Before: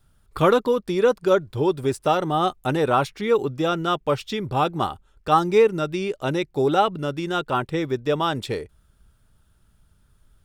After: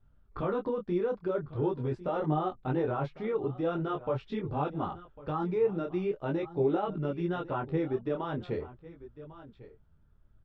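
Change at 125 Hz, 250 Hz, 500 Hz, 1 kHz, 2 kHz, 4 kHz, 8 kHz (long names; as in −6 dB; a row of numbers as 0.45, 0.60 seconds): −5.5 dB, −7.0 dB, −10.0 dB, −13.0 dB, −14.5 dB, −21.0 dB, below −30 dB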